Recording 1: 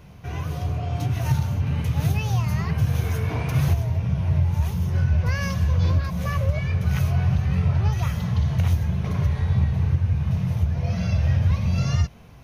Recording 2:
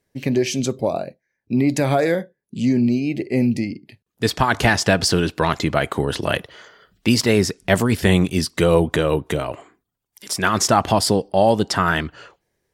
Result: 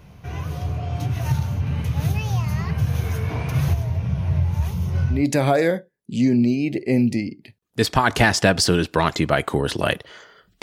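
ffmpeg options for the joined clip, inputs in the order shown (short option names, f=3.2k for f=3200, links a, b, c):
-filter_complex "[0:a]asettb=1/sr,asplit=3[a][b][c];[a]atrim=end=4.714[d];[b]atrim=start=4.71:end=5.26,asetpts=PTS-STARTPTS,afade=t=in:d=0.004:c=qsin,afade=t=out:st=0.546:d=0.004:c=qsin,bandreject=f=1.7k:w=7.5[e];[c]atrim=start=5.256[f];[d][e]acrossfade=d=0.004:c1=hsin:c2=qsin[g];[g][f]acrossfade=d=0.004:c1=qsin:c2=hsin,apad=whole_dur=10.62,atrim=end=10.62,atrim=end=5.26,asetpts=PTS-STARTPTS[h];[1:a]atrim=start=1.52:end=7.06,asetpts=PTS-STARTPTS[i];[h][i]acrossfade=d=0.18:c1=tri:c2=tri"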